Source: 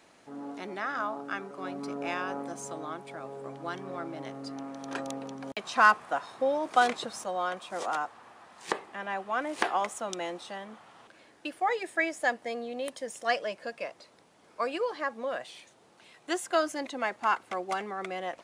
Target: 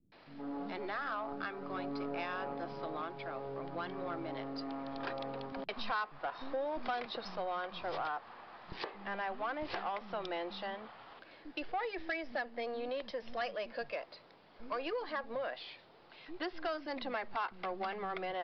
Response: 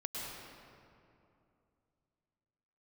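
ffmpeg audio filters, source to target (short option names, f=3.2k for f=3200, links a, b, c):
-filter_complex "[0:a]aeval=exprs='if(lt(val(0),0),0.708*val(0),val(0))':c=same,acrossover=split=230[a][b];[b]adelay=120[c];[a][c]amix=inputs=2:normalize=0,acompressor=threshold=-36dB:ratio=3,aresample=11025,asoftclip=type=tanh:threshold=-31dB,aresample=44100,volume=2dB"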